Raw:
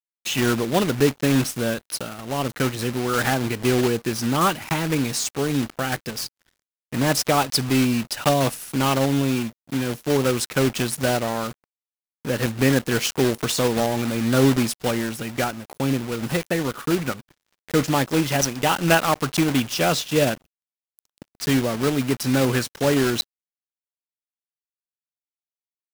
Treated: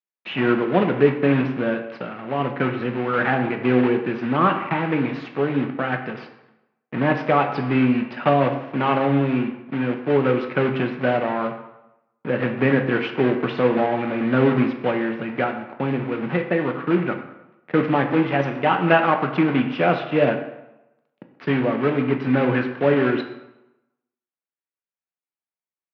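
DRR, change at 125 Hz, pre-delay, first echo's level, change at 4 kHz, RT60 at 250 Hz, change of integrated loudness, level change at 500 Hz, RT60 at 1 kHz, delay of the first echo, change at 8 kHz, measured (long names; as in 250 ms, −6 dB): 4.5 dB, −1.0 dB, 4 ms, no echo audible, −9.5 dB, 0.90 s, +1.0 dB, +2.5 dB, 0.95 s, no echo audible, below −35 dB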